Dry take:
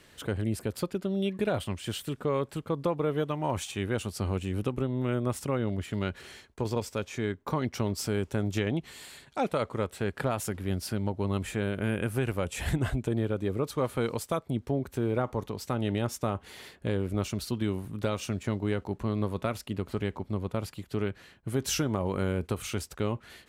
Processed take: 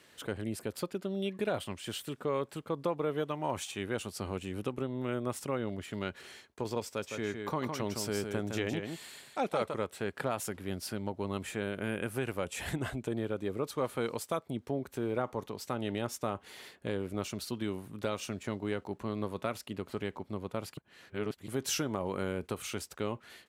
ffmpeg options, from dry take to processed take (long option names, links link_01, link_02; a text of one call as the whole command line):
ffmpeg -i in.wav -filter_complex "[0:a]asplit=3[link_01][link_02][link_03];[link_01]afade=type=out:start_time=7.02:duration=0.02[link_04];[link_02]aecho=1:1:161:0.531,afade=type=in:start_time=7.02:duration=0.02,afade=type=out:start_time=9.73:duration=0.02[link_05];[link_03]afade=type=in:start_time=9.73:duration=0.02[link_06];[link_04][link_05][link_06]amix=inputs=3:normalize=0,asplit=3[link_07][link_08][link_09];[link_07]atrim=end=20.772[link_10];[link_08]atrim=start=20.768:end=21.482,asetpts=PTS-STARTPTS,areverse[link_11];[link_09]atrim=start=21.478[link_12];[link_10][link_11]acrossfade=duration=0.004:curve1=hsin:curve2=hsin[link_13];[link_13][link_12]acrossfade=duration=0.004:curve1=hsin:curve2=hsin,highpass=frequency=240:poles=1,volume=-2.5dB" out.wav